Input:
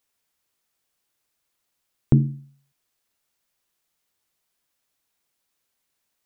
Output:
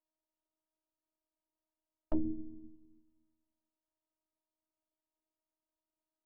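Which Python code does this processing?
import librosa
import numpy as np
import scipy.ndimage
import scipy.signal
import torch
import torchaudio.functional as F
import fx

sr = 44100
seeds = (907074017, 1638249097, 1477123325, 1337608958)

y = np.r_[np.sort(x[:len(x) // 16 * 16].reshape(-1, 16), axis=1).ravel(), x[len(x) // 16 * 16:]]
y = scipy.signal.sosfilt(scipy.signal.butter(4, 1000.0, 'lowpass', fs=sr, output='sos'), y)
y = fx.rev_fdn(y, sr, rt60_s=0.99, lf_ratio=1.4, hf_ratio=0.95, size_ms=48.0, drr_db=7.5)
y = 10.0 ** (-8.0 / 20.0) * (np.abs((y / 10.0 ** (-8.0 / 20.0) + 3.0) % 4.0 - 2.0) - 1.0)
y = fx.env_lowpass_down(y, sr, base_hz=780.0, full_db=-23.0)
y = fx.robotise(y, sr, hz=314.0)
y = 10.0 ** (-15.5 / 20.0) * np.tanh(y / 10.0 ** (-15.5 / 20.0))
y = y * 10.0 ** (-5.0 / 20.0)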